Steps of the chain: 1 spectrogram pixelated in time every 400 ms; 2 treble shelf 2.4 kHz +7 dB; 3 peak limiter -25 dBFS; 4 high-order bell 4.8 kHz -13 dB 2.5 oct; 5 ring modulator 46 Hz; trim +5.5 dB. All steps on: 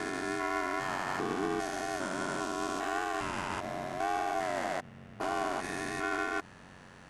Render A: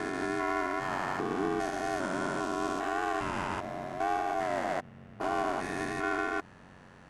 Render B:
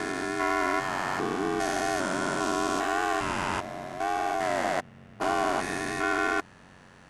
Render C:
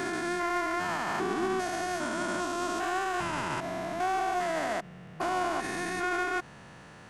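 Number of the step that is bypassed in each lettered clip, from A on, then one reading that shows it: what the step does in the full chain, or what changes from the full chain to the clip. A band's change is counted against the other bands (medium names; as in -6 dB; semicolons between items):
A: 2, 8 kHz band -5.5 dB; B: 3, mean gain reduction 4.5 dB; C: 5, crest factor change -2.0 dB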